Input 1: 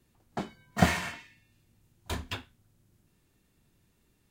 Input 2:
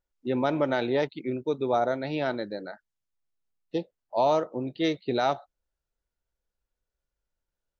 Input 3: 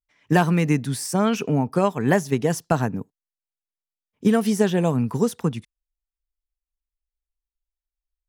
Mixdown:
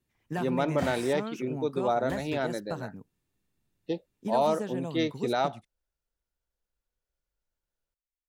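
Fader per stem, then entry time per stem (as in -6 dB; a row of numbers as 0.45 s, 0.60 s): -11.0 dB, -2.0 dB, -16.0 dB; 0.00 s, 0.15 s, 0.00 s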